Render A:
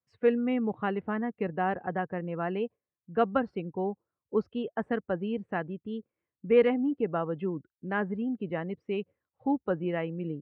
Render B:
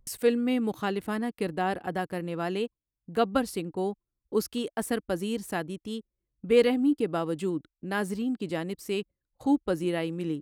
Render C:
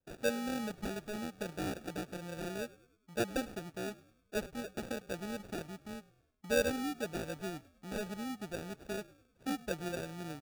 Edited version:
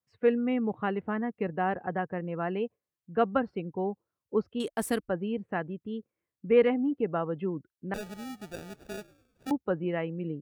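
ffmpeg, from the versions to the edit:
ffmpeg -i take0.wav -i take1.wav -i take2.wav -filter_complex "[0:a]asplit=3[link_01][link_02][link_03];[link_01]atrim=end=4.602[link_04];[1:a]atrim=start=4.598:end=5.092[link_05];[link_02]atrim=start=5.088:end=7.942[link_06];[2:a]atrim=start=7.938:end=9.512[link_07];[link_03]atrim=start=9.508[link_08];[link_04][link_05]acrossfade=duration=0.004:curve1=hsin:curve2=hsin[link_09];[link_09][link_06]acrossfade=duration=0.004:curve1=hsin:curve2=hsin[link_10];[link_10][link_07]acrossfade=duration=0.004:curve1=hsin:curve2=hsin[link_11];[link_11][link_08]acrossfade=duration=0.004:curve1=hsin:curve2=hsin" out.wav

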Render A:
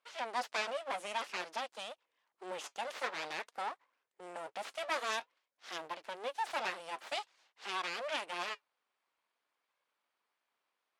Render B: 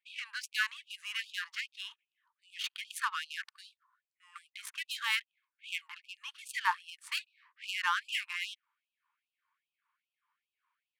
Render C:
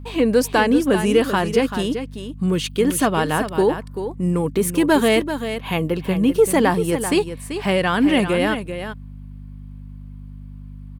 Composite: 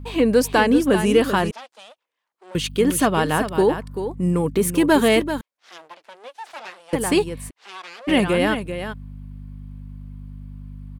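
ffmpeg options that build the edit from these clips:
ffmpeg -i take0.wav -i take1.wav -i take2.wav -filter_complex "[0:a]asplit=3[link_01][link_02][link_03];[2:a]asplit=4[link_04][link_05][link_06][link_07];[link_04]atrim=end=1.512[link_08];[link_01]atrim=start=1.508:end=2.552[link_09];[link_05]atrim=start=2.548:end=5.412[link_10];[link_02]atrim=start=5.408:end=6.932[link_11];[link_06]atrim=start=6.928:end=7.51[link_12];[link_03]atrim=start=7.49:end=8.09[link_13];[link_07]atrim=start=8.07[link_14];[link_08][link_09]acrossfade=duration=0.004:curve1=hsin:curve2=hsin[link_15];[link_15][link_10]acrossfade=duration=0.004:curve1=hsin:curve2=hsin[link_16];[link_16][link_11]acrossfade=duration=0.004:curve1=hsin:curve2=hsin[link_17];[link_17][link_12]acrossfade=duration=0.004:curve1=hsin:curve2=hsin[link_18];[link_18][link_13]acrossfade=duration=0.02:curve1=tri:curve2=tri[link_19];[link_19][link_14]acrossfade=duration=0.02:curve1=tri:curve2=tri" out.wav

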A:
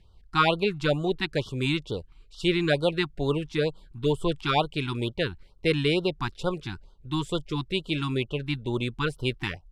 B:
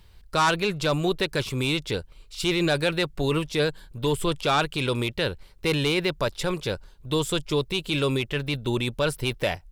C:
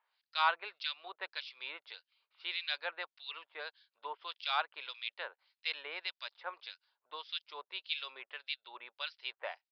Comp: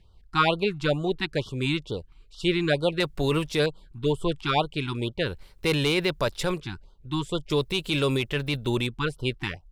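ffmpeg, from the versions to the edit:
ffmpeg -i take0.wav -i take1.wav -filter_complex "[1:a]asplit=3[link_01][link_02][link_03];[0:a]asplit=4[link_04][link_05][link_06][link_07];[link_04]atrim=end=3.002[link_08];[link_01]atrim=start=2.998:end=3.662[link_09];[link_05]atrim=start=3.658:end=5.33[link_10];[link_02]atrim=start=5.23:end=6.62[link_11];[link_06]atrim=start=6.52:end=7.502[link_12];[link_03]atrim=start=7.498:end=8.872[link_13];[link_07]atrim=start=8.868[link_14];[link_08][link_09]acrossfade=duration=0.004:curve1=hsin:curve2=hsin[link_15];[link_15][link_10]acrossfade=duration=0.004:curve1=hsin:curve2=hsin[link_16];[link_16][link_11]acrossfade=duration=0.1:curve1=tri:curve2=tri[link_17];[link_17][link_12]acrossfade=duration=0.1:curve1=tri:curve2=tri[link_18];[link_18][link_13]acrossfade=duration=0.004:curve1=hsin:curve2=hsin[link_19];[link_19][link_14]acrossfade=duration=0.004:curve1=hsin:curve2=hsin" out.wav

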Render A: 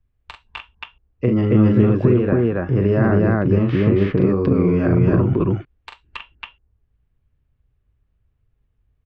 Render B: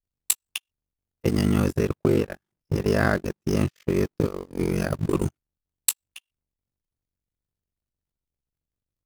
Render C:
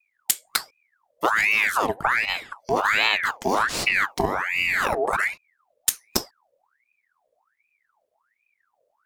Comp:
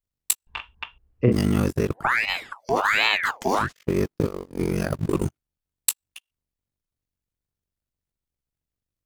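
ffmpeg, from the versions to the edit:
ffmpeg -i take0.wav -i take1.wav -i take2.wav -filter_complex "[1:a]asplit=3[link_01][link_02][link_03];[link_01]atrim=end=0.472[link_04];[0:a]atrim=start=0.468:end=1.322[link_05];[link_02]atrim=start=1.318:end=2.08[link_06];[2:a]atrim=start=1.92:end=3.73[link_07];[link_03]atrim=start=3.57[link_08];[link_04][link_05]acrossfade=duration=0.004:curve1=hsin:curve2=hsin[link_09];[link_09][link_06]acrossfade=duration=0.004:curve1=hsin:curve2=hsin[link_10];[link_10][link_07]acrossfade=duration=0.16:curve1=tri:curve2=tri[link_11];[link_11][link_08]acrossfade=duration=0.16:curve1=tri:curve2=tri" out.wav

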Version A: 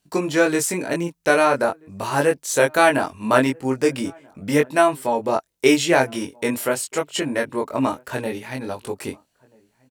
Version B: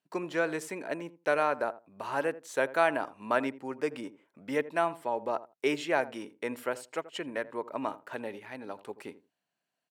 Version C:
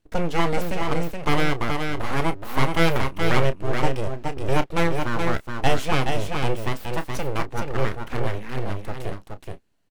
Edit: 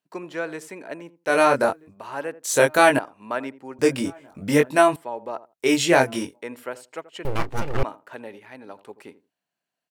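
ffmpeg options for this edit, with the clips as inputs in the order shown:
ffmpeg -i take0.wav -i take1.wav -i take2.wav -filter_complex "[0:a]asplit=4[link_01][link_02][link_03][link_04];[1:a]asplit=6[link_05][link_06][link_07][link_08][link_09][link_10];[link_05]atrim=end=1.4[link_11];[link_01]atrim=start=1.24:end=1.96[link_12];[link_06]atrim=start=1.8:end=2.442[link_13];[link_02]atrim=start=2.438:end=2.992[link_14];[link_07]atrim=start=2.988:end=3.792[link_15];[link_03]atrim=start=3.788:end=4.962[link_16];[link_08]atrim=start=4.958:end=5.81[link_17];[link_04]atrim=start=5.57:end=6.43[link_18];[link_09]atrim=start=6.19:end=7.252[link_19];[2:a]atrim=start=7.248:end=7.832[link_20];[link_10]atrim=start=7.828[link_21];[link_11][link_12]acrossfade=duration=0.16:curve1=tri:curve2=tri[link_22];[link_22][link_13]acrossfade=duration=0.16:curve1=tri:curve2=tri[link_23];[link_23][link_14]acrossfade=duration=0.004:curve1=hsin:curve2=hsin[link_24];[link_24][link_15]acrossfade=duration=0.004:curve1=hsin:curve2=hsin[link_25];[link_25][link_16]acrossfade=duration=0.004:curve1=hsin:curve2=hsin[link_26];[link_26][link_17]acrossfade=duration=0.004:curve1=hsin:curve2=hsin[link_27];[link_27][link_18]acrossfade=duration=0.24:curve1=tri:curve2=tri[link_28];[link_28][link_19]acrossfade=duration=0.24:curve1=tri:curve2=tri[link_29];[link_29][link_20]acrossfade=duration=0.004:curve1=hsin:curve2=hsin[link_30];[link_30][link_21]acrossfade=duration=0.004:curve1=hsin:curve2=hsin" out.wav

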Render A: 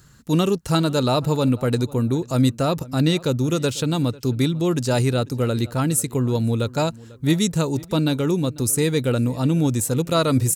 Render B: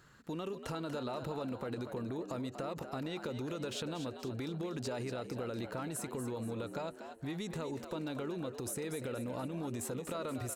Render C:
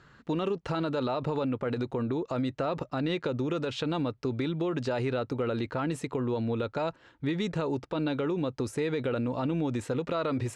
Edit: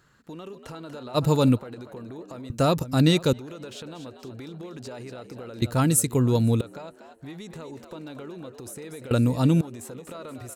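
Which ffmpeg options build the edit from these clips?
ffmpeg -i take0.wav -i take1.wav -filter_complex "[0:a]asplit=4[link_01][link_02][link_03][link_04];[1:a]asplit=5[link_05][link_06][link_07][link_08][link_09];[link_05]atrim=end=1.18[link_10];[link_01]atrim=start=1.14:end=1.6[link_11];[link_06]atrim=start=1.56:end=2.502[link_12];[link_02]atrim=start=2.498:end=3.332[link_13];[link_07]atrim=start=3.328:end=5.622[link_14];[link_03]atrim=start=5.618:end=6.612[link_15];[link_08]atrim=start=6.608:end=9.112[link_16];[link_04]atrim=start=9.108:end=9.612[link_17];[link_09]atrim=start=9.608[link_18];[link_10][link_11]acrossfade=duration=0.04:curve1=tri:curve2=tri[link_19];[link_19][link_12]acrossfade=duration=0.04:curve1=tri:curve2=tri[link_20];[link_20][link_13]acrossfade=duration=0.004:curve1=hsin:curve2=hsin[link_21];[link_21][link_14]acrossfade=duration=0.004:curve1=hsin:curve2=hsin[link_22];[link_22][link_15]acrossfade=duration=0.004:curve1=hsin:curve2=hsin[link_23];[link_23][link_16]acrossfade=duration=0.004:curve1=hsin:curve2=hsin[link_24];[link_24][link_17]acrossfade=duration=0.004:curve1=hsin:curve2=hsin[link_25];[link_25][link_18]acrossfade=duration=0.004:curve1=hsin:curve2=hsin" out.wav

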